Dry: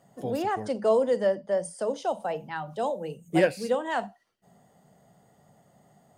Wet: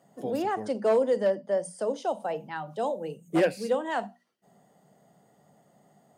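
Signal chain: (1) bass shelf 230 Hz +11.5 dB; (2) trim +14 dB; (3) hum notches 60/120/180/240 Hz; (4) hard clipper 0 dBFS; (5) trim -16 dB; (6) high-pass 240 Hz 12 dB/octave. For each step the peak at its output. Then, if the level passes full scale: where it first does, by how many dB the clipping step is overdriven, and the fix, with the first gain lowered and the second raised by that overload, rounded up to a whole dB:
-7.5 dBFS, +6.5 dBFS, +6.5 dBFS, 0.0 dBFS, -16.0 dBFS, -12.5 dBFS; step 2, 6.5 dB; step 2 +7 dB, step 5 -9 dB

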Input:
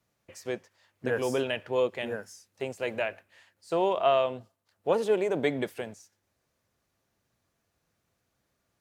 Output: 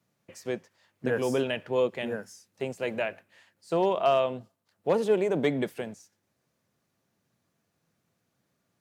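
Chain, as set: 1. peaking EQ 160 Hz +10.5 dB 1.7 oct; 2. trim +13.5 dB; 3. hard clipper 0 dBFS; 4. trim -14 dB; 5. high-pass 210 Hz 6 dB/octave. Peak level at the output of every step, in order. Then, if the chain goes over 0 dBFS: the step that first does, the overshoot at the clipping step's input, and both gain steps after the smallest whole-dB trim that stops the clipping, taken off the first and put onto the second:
-10.0 dBFS, +3.5 dBFS, 0.0 dBFS, -14.0 dBFS, -13.0 dBFS; step 2, 3.5 dB; step 2 +9.5 dB, step 4 -10 dB

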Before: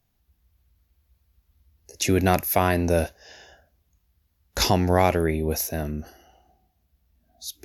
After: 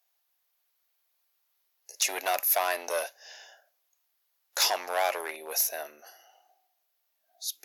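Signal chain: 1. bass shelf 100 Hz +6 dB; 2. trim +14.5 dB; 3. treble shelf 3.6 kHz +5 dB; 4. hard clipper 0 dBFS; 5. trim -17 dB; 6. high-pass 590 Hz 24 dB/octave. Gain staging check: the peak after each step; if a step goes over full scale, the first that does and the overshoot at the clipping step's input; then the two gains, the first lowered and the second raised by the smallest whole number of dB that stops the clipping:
-5.5 dBFS, +9.0 dBFS, +9.5 dBFS, 0.0 dBFS, -17.0 dBFS, -12.5 dBFS; step 2, 9.5 dB; step 2 +4.5 dB, step 5 -7 dB

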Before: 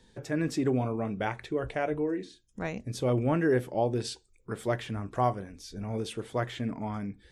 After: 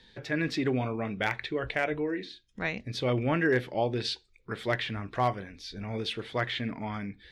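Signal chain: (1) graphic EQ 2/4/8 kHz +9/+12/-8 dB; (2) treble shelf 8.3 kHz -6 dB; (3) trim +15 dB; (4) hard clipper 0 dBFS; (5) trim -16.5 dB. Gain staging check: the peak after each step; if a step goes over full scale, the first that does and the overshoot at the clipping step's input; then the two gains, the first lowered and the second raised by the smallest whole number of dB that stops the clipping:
-10.5 dBFS, -10.5 dBFS, +4.5 dBFS, 0.0 dBFS, -16.5 dBFS; step 3, 4.5 dB; step 3 +10 dB, step 5 -11.5 dB

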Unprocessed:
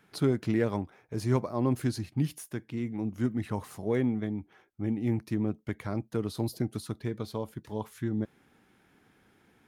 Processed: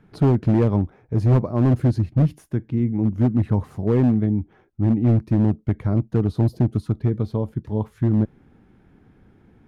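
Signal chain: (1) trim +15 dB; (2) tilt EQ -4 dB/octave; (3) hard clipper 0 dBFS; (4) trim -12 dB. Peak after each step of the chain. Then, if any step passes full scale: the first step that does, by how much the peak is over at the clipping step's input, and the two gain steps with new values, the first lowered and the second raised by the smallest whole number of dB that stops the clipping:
+1.0 dBFS, +8.0 dBFS, 0.0 dBFS, -12.0 dBFS; step 1, 8.0 dB; step 1 +7 dB, step 4 -4 dB

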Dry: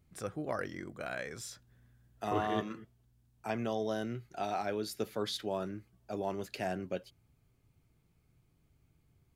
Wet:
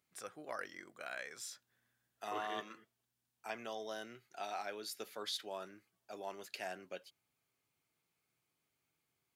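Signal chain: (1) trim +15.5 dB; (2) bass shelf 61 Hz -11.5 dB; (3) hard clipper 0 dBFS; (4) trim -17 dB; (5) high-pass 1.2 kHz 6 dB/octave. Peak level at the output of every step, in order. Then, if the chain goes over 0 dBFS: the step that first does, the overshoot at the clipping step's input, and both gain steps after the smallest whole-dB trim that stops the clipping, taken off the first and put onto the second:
-3.0 dBFS, -3.5 dBFS, -3.5 dBFS, -20.5 dBFS, -27.0 dBFS; nothing clips

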